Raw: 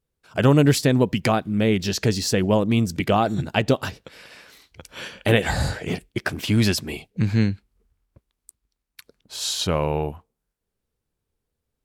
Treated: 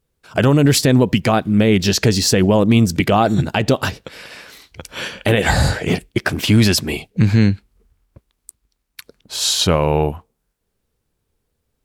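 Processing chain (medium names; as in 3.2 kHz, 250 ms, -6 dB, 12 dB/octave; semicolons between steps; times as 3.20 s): peak limiter -13 dBFS, peak gain reduction 9 dB; trim +8.5 dB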